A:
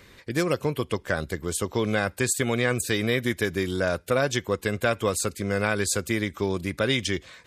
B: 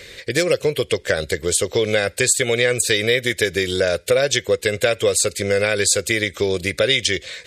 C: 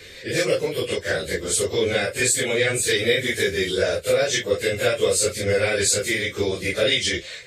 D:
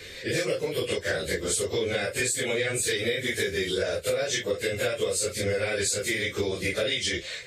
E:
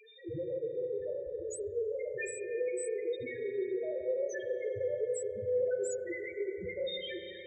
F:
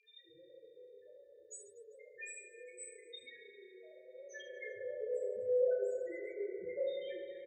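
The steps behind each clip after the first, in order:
graphic EQ 250/500/1000/2000/4000/8000 Hz -7/+12/-11/+8/+8/+8 dB; compression 2:1, threshold -24 dBFS, peak gain reduction 7 dB; trim +6 dB
phase randomisation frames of 100 ms; trim -2.5 dB
compression, threshold -24 dBFS, peak gain reduction 9.5 dB
loudest bins only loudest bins 1; spring tank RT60 3.4 s, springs 32/42 ms, chirp 65 ms, DRR 4 dB
reverse bouncing-ball echo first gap 30 ms, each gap 1.5×, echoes 5; band-pass sweep 4.4 kHz -> 740 Hz, 4.15–5.23 s; tape noise reduction on one side only decoder only; trim +3.5 dB

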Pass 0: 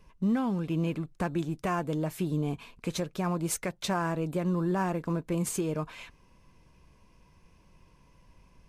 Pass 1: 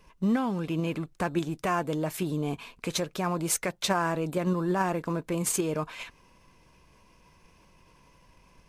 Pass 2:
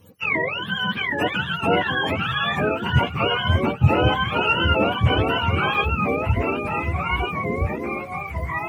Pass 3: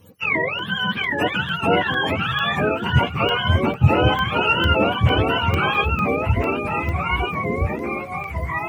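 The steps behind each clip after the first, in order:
in parallel at +3 dB: level held to a coarse grid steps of 9 dB; on the sum: bass shelf 270 Hz -8 dB
spectrum inverted on a logarithmic axis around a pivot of 710 Hz; ever faster or slower copies 729 ms, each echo -2 st, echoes 3; trim +8 dB
crackling interface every 0.45 s, samples 64, zero, from 0.59 s; trim +1.5 dB

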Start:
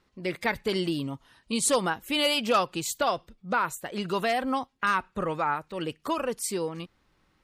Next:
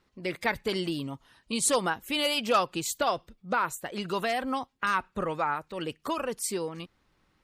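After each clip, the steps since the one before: harmonic-percussive split harmonic -3 dB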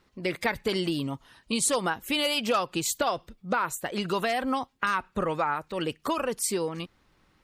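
compression 3:1, threshold -28 dBFS, peak gain reduction 7 dB; trim +4.5 dB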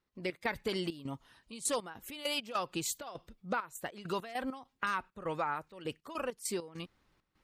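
trance gate ".x.xxx.xxx.x.x" 100 bpm -12 dB; trim -7 dB

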